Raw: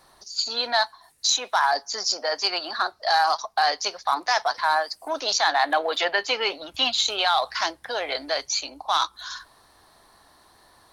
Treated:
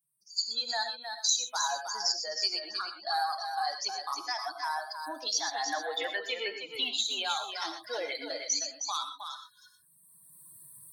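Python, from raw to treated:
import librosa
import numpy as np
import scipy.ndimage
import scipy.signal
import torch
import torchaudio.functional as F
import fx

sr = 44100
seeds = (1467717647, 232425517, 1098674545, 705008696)

p1 = fx.bin_expand(x, sr, power=2.0)
p2 = fx.recorder_agc(p1, sr, target_db=-18.5, rise_db_per_s=21.0, max_gain_db=30)
p3 = scipy.signal.sosfilt(scipy.signal.butter(4, 130.0, 'highpass', fs=sr, output='sos'), p2)
p4 = fx.bass_treble(p3, sr, bass_db=-1, treble_db=9)
p5 = fx.notch(p4, sr, hz=640.0, q=16.0)
p6 = p5 + fx.echo_single(p5, sr, ms=314, db=-7.0, dry=0)
p7 = fx.rev_gated(p6, sr, seeds[0], gate_ms=140, shape='rising', drr_db=7.0)
y = p7 * librosa.db_to_amplitude(-8.5)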